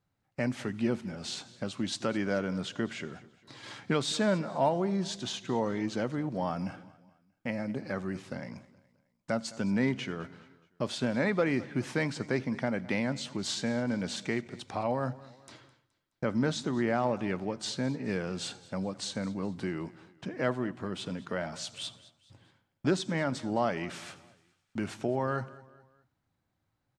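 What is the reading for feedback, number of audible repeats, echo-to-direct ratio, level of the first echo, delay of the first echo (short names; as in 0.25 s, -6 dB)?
43%, 3, -19.0 dB, -20.0 dB, 0.211 s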